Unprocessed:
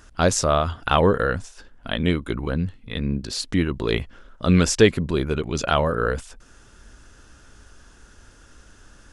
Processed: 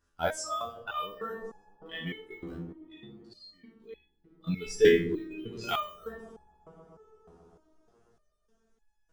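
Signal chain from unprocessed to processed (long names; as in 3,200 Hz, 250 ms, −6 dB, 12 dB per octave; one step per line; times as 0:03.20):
peak hold with a decay on every bin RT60 0.52 s
in parallel at −11.5 dB: sample-and-hold swept by an LFO 17×, swing 60% 0.34 Hz
on the sum: noise reduction from a noise print of the clip's start 17 dB
0:02.56–0:04.47: downward compressor 3 to 1, threshold −40 dBFS, peak gain reduction 17.5 dB
0:05.61–0:06.05: high-shelf EQ 3,100 Hz +9.5 dB
on a send: delay with a low-pass on its return 127 ms, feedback 84%, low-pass 530 Hz, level −11.5 dB
on the sum: four-comb reverb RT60 0.35 s, combs from 26 ms, DRR 16 dB
step-sequenced resonator 3.3 Hz 84–840 Hz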